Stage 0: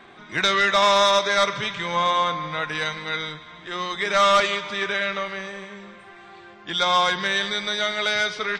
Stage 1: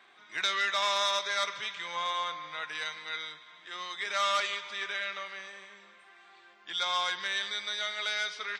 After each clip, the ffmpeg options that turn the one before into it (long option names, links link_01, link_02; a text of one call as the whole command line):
ffmpeg -i in.wav -af "highpass=frequency=1500:poles=1,volume=-7dB" out.wav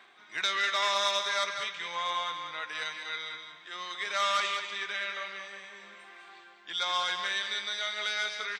ffmpeg -i in.wav -af "areverse,acompressor=mode=upward:threshold=-44dB:ratio=2.5,areverse,aecho=1:1:195:0.422" out.wav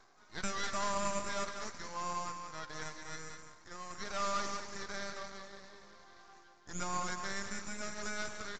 ffmpeg -i in.wav -filter_complex "[0:a]acrossover=split=1600[link_01][link_02];[link_02]aeval=exprs='abs(val(0))':channel_layout=same[link_03];[link_01][link_03]amix=inputs=2:normalize=0,aresample=16000,aresample=44100,volume=-4.5dB" out.wav